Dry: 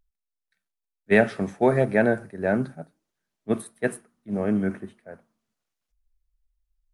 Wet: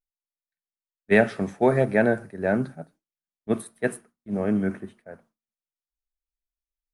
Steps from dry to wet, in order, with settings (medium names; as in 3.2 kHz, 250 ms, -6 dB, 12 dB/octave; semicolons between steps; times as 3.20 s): gate with hold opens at -48 dBFS